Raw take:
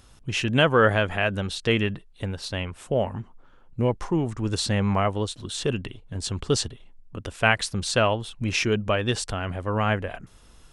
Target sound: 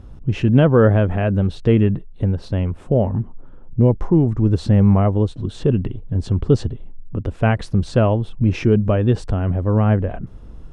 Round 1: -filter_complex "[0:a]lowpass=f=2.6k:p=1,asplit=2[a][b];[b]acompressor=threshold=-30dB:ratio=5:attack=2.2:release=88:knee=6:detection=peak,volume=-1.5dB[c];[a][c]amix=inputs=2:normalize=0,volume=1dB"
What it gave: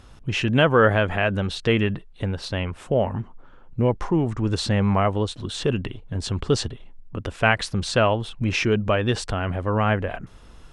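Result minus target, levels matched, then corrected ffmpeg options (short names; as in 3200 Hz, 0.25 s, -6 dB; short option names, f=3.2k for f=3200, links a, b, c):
1000 Hz band +7.0 dB
-filter_complex "[0:a]lowpass=f=2.6k:p=1,tiltshelf=f=760:g=10,asplit=2[a][b];[b]acompressor=threshold=-30dB:ratio=5:attack=2.2:release=88:knee=6:detection=peak,volume=-1.5dB[c];[a][c]amix=inputs=2:normalize=0,volume=1dB"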